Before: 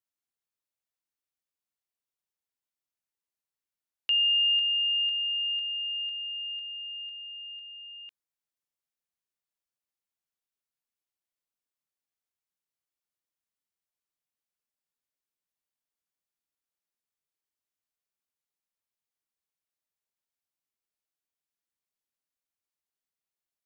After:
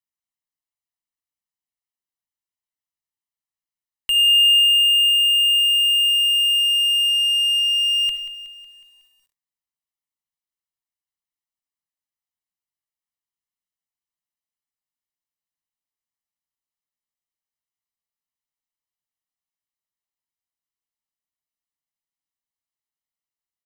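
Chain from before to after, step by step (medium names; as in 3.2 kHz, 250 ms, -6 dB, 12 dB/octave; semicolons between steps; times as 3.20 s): comb 1 ms, depth 80%; in parallel at -3.5 dB: fuzz box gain 48 dB, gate -53 dBFS; on the sum: reverberation RT60 0.30 s, pre-delay 35 ms, DRR 9.5 dB; bit-crushed delay 184 ms, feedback 55%, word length 8-bit, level -12.5 dB; trim -5.5 dB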